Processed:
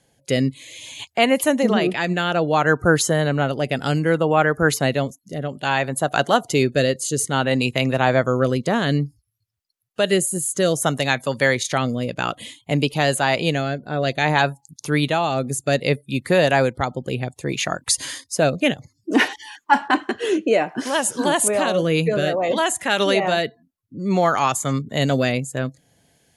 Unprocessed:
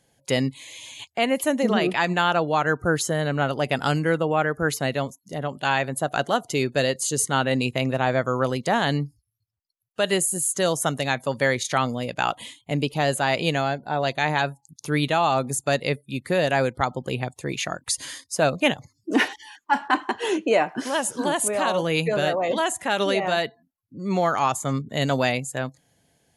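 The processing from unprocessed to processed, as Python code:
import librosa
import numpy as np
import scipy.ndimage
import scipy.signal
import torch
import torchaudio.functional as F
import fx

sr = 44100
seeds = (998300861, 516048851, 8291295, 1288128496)

y = fx.rotary(x, sr, hz=0.6)
y = y * librosa.db_to_amplitude(6.0)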